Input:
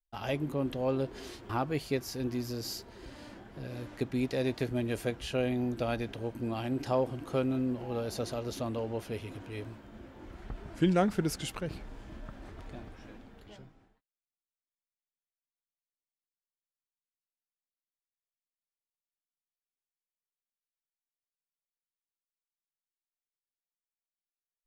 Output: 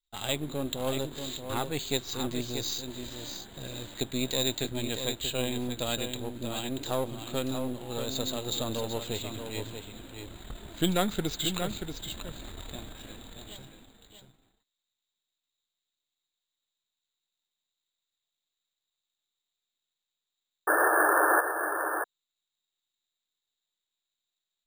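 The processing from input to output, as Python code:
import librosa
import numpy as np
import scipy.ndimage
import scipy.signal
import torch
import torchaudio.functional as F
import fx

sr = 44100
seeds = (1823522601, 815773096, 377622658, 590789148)

p1 = np.where(x < 0.0, 10.0 ** (-7.0 / 20.0) * x, x)
p2 = fx.rider(p1, sr, range_db=4, speed_s=2.0)
p3 = fx.spec_paint(p2, sr, seeds[0], shape='noise', start_s=20.67, length_s=0.74, low_hz=300.0, high_hz=1800.0, level_db=-24.0)
p4 = fx.lowpass_res(p3, sr, hz=3800.0, q=13.0)
p5 = p4 + fx.echo_single(p4, sr, ms=633, db=-7.5, dry=0)
y = np.repeat(scipy.signal.resample_poly(p5, 1, 4), 4)[:len(p5)]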